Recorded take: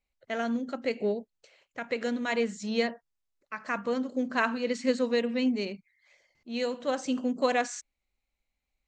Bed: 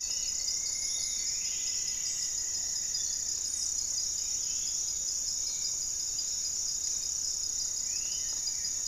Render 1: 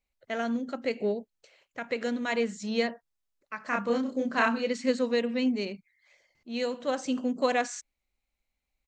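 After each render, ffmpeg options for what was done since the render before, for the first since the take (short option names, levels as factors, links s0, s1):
-filter_complex "[0:a]asplit=3[s0][s1][s2];[s0]afade=t=out:st=3.71:d=0.02[s3];[s1]asplit=2[s4][s5];[s5]adelay=30,volume=0.794[s6];[s4][s6]amix=inputs=2:normalize=0,afade=t=in:st=3.71:d=0.02,afade=t=out:st=4.66:d=0.02[s7];[s2]afade=t=in:st=4.66:d=0.02[s8];[s3][s7][s8]amix=inputs=3:normalize=0"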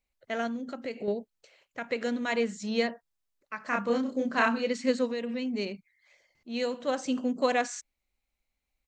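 -filter_complex "[0:a]asettb=1/sr,asplit=3[s0][s1][s2];[s0]atrim=end=0.474[s3];[s1]atrim=start=0.47:end=1.08,asetpts=PTS-STARTPTS,afade=t=in:d=0.004:c=qsin,afade=t=out:st=0.606:d=0.004:c=qsin,acompressor=threshold=0.0178:ratio=2:attack=3.2:release=140:knee=1:detection=peak[s4];[s2]atrim=start=1.076[s5];[s3][s4]acrossfade=d=0.004:c1=hsin:c2=qsin[s6];[s6][s5]acrossfade=d=0.004:c1=qsin:c2=hsin,asplit=3[s7][s8][s9];[s7]afade=t=out:st=5.06:d=0.02[s10];[s8]acompressor=threshold=0.0355:ratio=6:attack=3.2:release=140:knee=1:detection=peak,afade=t=in:st=5.06:d=0.02,afade=t=out:st=5.53:d=0.02[s11];[s9]afade=t=in:st=5.53:d=0.02[s12];[s10][s11][s12]amix=inputs=3:normalize=0"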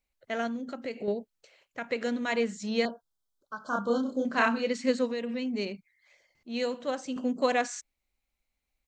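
-filter_complex "[0:a]asettb=1/sr,asplit=3[s0][s1][s2];[s0]atrim=end=2.854[s3];[s1]atrim=start=2.85:end=4.25,asetpts=PTS-STARTPTS,afade=t=in:d=0.004:c=qsin,afade=t=out:st=1.396:d=0.004:c=qsin,asuperstop=centerf=2200:order=20:qfactor=1.5[s4];[s2]atrim=start=4.246[s5];[s3][s4]acrossfade=d=0.004:c1=hsin:c2=qsin[s6];[s6][s5]acrossfade=d=0.004:c1=qsin:c2=hsin,asplit=2[s7][s8];[s7]atrim=end=7.16,asetpts=PTS-STARTPTS,afade=t=out:st=6.71:d=0.45:silence=0.473151[s9];[s8]atrim=start=7.16,asetpts=PTS-STARTPTS,afade=t=in:d=0.004:c=hsin:silence=0.473151[s10];[s9][s10]concat=n=2:v=0:a=1"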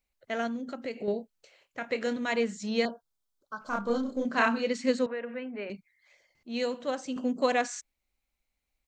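-filter_complex "[0:a]asettb=1/sr,asplit=3[s0][s1][s2];[s0]atrim=end=1.114[s3];[s1]atrim=start=1.11:end=2.17,asetpts=PTS-STARTPTS,afade=t=in:d=0.004:c=qsin,afade=t=out:st=1.056:d=0.004:c=qsin,asplit=2[s4][s5];[s5]adelay=27,volume=0.316[s6];[s4][s6]amix=inputs=2:normalize=0,atrim=end_sample=46746[s7];[s2]atrim=start=2.166[s8];[s3][s7]acrossfade=d=0.004:c1=hsin:c2=qsin[s9];[s9][s8]acrossfade=d=0.004:c1=qsin:c2=hsin,asettb=1/sr,asplit=3[s10][s11][s12];[s10]atrim=end=3.614[s13];[s11]atrim=start=3.61:end=4.25,asetpts=PTS-STARTPTS,afade=t=in:d=0.004:c=qsin,afade=t=out:st=0.636:d=0.004:c=qsin,aeval=exprs='if(lt(val(0),0),0.708*val(0),val(0))':c=same[s14];[s12]atrim=start=4.246[s15];[s13][s14]acrossfade=d=0.004:c1=hsin:c2=qsin[s16];[s16][s15]acrossfade=d=0.004:c1=qsin:c2=hsin,asettb=1/sr,asplit=3[s17][s18][s19];[s17]atrim=end=5.064[s20];[s18]atrim=start=5.06:end=5.7,asetpts=PTS-STARTPTS,afade=t=in:d=0.004:c=qsin,afade=t=out:st=0.636:d=0.004:c=qsin,highpass=360,equalizer=f=380:t=q:w=4:g=-5,equalizer=f=590:t=q:w=4:g=4,equalizer=f=1500:t=q:w=4:g=9,lowpass=f=2400:w=0.5412,lowpass=f=2400:w=1.3066[s21];[s19]atrim=start=5.696[s22];[s20][s21]acrossfade=d=0.004:c1=hsin:c2=qsin[s23];[s23][s22]acrossfade=d=0.004:c1=qsin:c2=hsin"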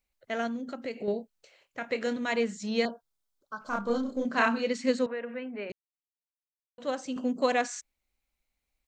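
-filter_complex "[0:a]asplit=3[s0][s1][s2];[s0]atrim=end=5.72,asetpts=PTS-STARTPTS,afade=t=out:st=5.716:d=0.004:c=hsin[s3];[s1]atrim=start=5.72:end=6.78,asetpts=PTS-STARTPTS,volume=0[s4];[s2]atrim=start=6.78,asetpts=PTS-STARTPTS,afade=t=in:d=0.004:c=hsin[s5];[s3][s4][s5]concat=n=3:v=0:a=1"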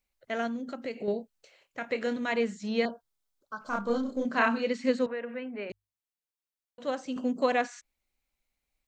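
-filter_complex "[0:a]bandreject=f=50:t=h:w=6,bandreject=f=100:t=h:w=6,acrossover=split=3900[s0][s1];[s1]acompressor=threshold=0.00282:ratio=4:attack=1:release=60[s2];[s0][s2]amix=inputs=2:normalize=0"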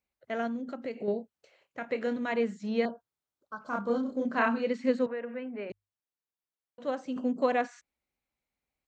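-af "highpass=73,highshelf=f=2600:g=-9.5"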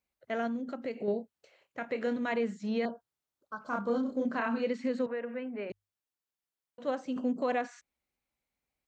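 -af "alimiter=limit=0.0794:level=0:latency=1:release=74"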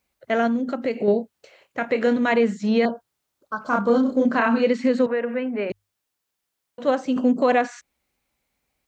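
-af "volume=3.98"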